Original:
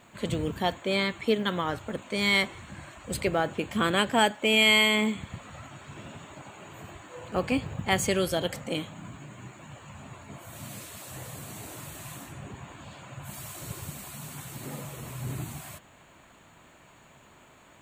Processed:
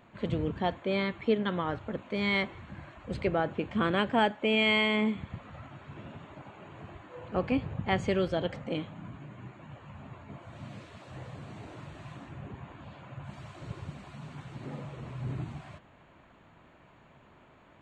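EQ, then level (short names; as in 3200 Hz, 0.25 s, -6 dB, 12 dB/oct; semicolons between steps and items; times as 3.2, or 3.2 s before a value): tape spacing loss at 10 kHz 42 dB; high shelf 2700 Hz +9.5 dB; 0.0 dB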